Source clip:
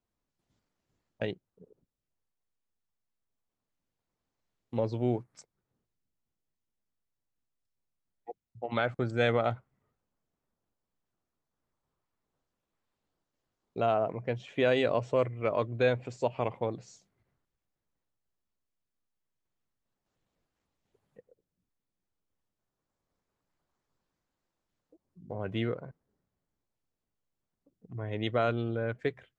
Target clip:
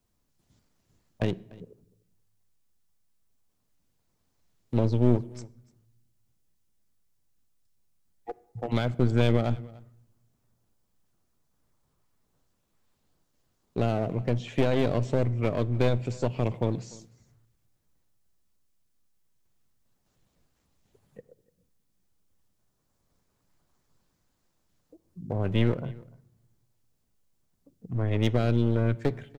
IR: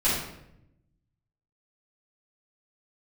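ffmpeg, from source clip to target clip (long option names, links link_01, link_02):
-filter_complex "[0:a]acrossover=split=3800[link_01][link_02];[link_02]acompressor=threshold=-59dB:ratio=4:attack=1:release=60[link_03];[link_01][link_03]amix=inputs=2:normalize=0,bass=frequency=250:gain=6,treble=frequency=4000:gain=6,acrossover=split=430|2700[link_04][link_05][link_06];[link_05]acompressor=threshold=-40dB:ratio=6[link_07];[link_04][link_07][link_06]amix=inputs=3:normalize=0,aeval=exprs='clip(val(0),-1,0.015)':channel_layout=same,aecho=1:1:295:0.0708,asplit=2[link_08][link_09];[1:a]atrim=start_sample=2205[link_10];[link_09][link_10]afir=irnorm=-1:irlink=0,volume=-32.5dB[link_11];[link_08][link_11]amix=inputs=2:normalize=0,volume=6.5dB"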